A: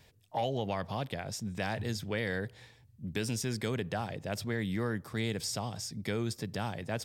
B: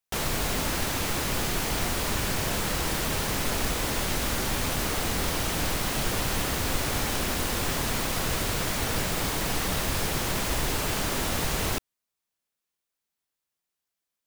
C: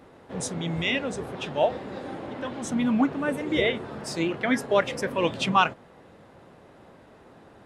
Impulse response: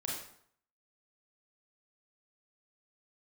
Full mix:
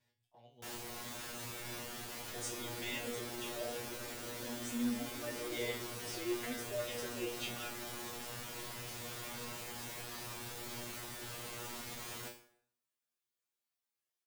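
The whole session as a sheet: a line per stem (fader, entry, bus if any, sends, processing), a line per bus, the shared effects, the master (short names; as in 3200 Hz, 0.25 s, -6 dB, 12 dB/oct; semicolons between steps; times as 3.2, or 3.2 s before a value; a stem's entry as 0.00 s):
-7.5 dB, 0.00 s, send -11 dB, compressor 8:1, threshold -41 dBFS, peak gain reduction 13 dB
+2.5 dB, 0.50 s, send -9.5 dB, soft clip -36.5 dBFS, distortion -6 dB
+1.0 dB, 2.00 s, no send, limiter -19.5 dBFS, peak gain reduction 11.5 dB; fixed phaser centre 390 Hz, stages 4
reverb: on, RT60 0.65 s, pre-delay 27 ms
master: low shelf 89 Hz -11.5 dB; resonator 120 Hz, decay 0.33 s, harmonics all, mix 100%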